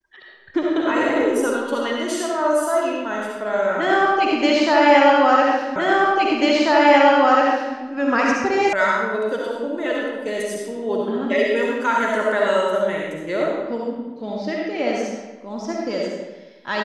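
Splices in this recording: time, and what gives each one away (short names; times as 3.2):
5.76 repeat of the last 1.99 s
8.73 sound cut off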